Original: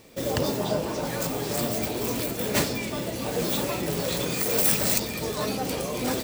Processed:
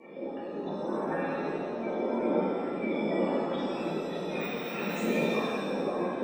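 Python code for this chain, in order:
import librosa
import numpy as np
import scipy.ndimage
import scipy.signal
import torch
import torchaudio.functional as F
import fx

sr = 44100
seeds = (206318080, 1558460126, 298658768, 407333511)

y = scipy.ndimage.median_filter(x, 9, mode='constant')
y = scipy.signal.sosfilt(scipy.signal.butter(4, 190.0, 'highpass', fs=sr, output='sos'), y)
y = fx.spec_gate(y, sr, threshold_db=-15, keep='strong')
y = fx.high_shelf(y, sr, hz=2200.0, db=9.0)
y = fx.over_compress(y, sr, threshold_db=-35.0, ratio=-0.5)
y = fx.rotary_switch(y, sr, hz=0.8, then_hz=7.0, switch_at_s=4.88)
y = fx.echo_banded(y, sr, ms=171, feedback_pct=49, hz=2800.0, wet_db=-6.0)
y = fx.rev_shimmer(y, sr, seeds[0], rt60_s=1.4, semitones=7, shimmer_db=-8, drr_db=-10.0)
y = y * 10.0 ** (-4.0 / 20.0)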